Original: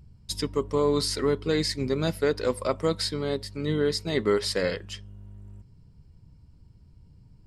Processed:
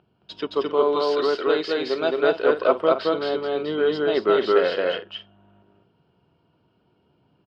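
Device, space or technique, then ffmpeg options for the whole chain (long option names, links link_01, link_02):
phone earpiece: -filter_complex "[0:a]asettb=1/sr,asplit=3[link_01][link_02][link_03];[link_01]atrim=end=0.744[link_04];[link_02]atrim=start=0.74:end=2.23,asetpts=PTS-STARTPTS,afade=type=in:duration=0.004:curve=qsin,afade=type=out:start_time=1.486:duration=0.004:curve=qsin,bass=frequency=250:gain=-9,treble=frequency=4000:gain=6[link_05];[link_03]atrim=start=2.226[link_06];[link_04][link_05]acrossfade=duration=0.004:curve1=hsin:curve2=qsin[link_07];[link_07][link_06]acrossfade=duration=0.004:curve1=qsin:curve2=hsin,highpass=360,equalizer=frequency=360:width_type=q:width=4:gain=5,equalizer=frequency=690:width_type=q:width=4:gain=8,equalizer=frequency=1400:width_type=q:width=4:gain=7,equalizer=frequency=2000:width_type=q:width=4:gain=-9,equalizer=frequency=3000:width_type=q:width=4:gain=8,lowpass=frequency=3200:width=0.5412,lowpass=frequency=3200:width=1.3066,aecho=1:1:218.7|265.3:0.891|0.251,volume=3dB"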